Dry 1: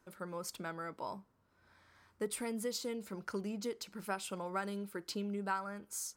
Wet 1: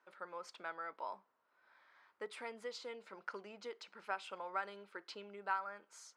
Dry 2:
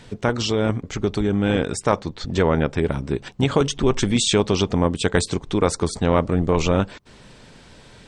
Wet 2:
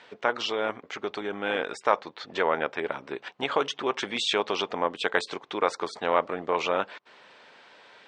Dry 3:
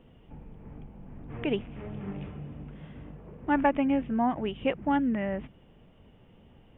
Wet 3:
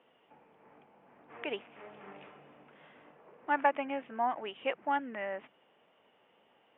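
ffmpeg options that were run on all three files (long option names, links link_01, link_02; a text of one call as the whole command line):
ffmpeg -i in.wav -af "highpass=650,lowpass=3100" out.wav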